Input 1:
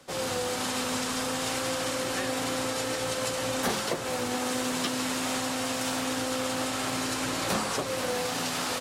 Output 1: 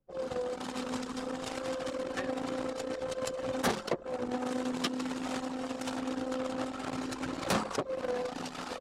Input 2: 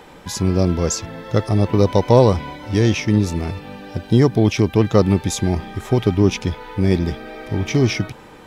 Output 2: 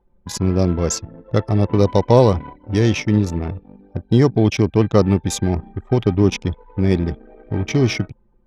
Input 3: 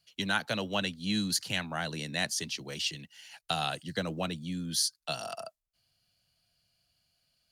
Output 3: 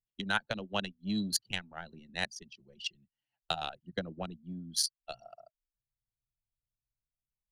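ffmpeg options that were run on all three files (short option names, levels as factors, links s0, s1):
-af "anlmdn=158"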